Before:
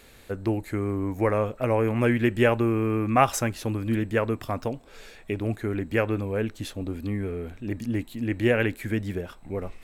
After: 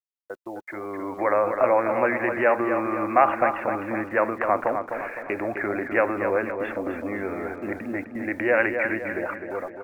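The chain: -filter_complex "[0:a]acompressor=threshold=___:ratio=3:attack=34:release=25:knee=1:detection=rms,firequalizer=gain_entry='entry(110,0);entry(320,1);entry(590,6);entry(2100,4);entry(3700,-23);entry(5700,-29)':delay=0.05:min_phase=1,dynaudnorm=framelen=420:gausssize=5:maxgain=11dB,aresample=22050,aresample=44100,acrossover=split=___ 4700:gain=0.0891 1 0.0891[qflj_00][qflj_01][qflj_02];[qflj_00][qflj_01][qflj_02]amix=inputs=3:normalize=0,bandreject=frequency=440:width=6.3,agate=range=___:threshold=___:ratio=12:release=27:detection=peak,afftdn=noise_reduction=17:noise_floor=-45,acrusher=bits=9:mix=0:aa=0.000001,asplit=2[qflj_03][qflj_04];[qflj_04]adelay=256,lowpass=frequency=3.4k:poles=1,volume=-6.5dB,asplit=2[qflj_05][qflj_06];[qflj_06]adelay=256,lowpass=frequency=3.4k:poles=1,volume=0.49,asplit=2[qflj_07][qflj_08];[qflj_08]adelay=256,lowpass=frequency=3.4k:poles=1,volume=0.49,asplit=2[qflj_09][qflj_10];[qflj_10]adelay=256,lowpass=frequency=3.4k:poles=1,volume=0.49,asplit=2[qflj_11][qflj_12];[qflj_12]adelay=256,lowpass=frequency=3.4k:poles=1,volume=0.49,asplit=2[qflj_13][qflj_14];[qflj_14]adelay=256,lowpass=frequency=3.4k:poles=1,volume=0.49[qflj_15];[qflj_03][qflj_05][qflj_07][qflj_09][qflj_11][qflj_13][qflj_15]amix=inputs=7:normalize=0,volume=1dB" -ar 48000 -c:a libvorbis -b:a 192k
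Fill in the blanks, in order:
-38dB, 320, -23dB, -42dB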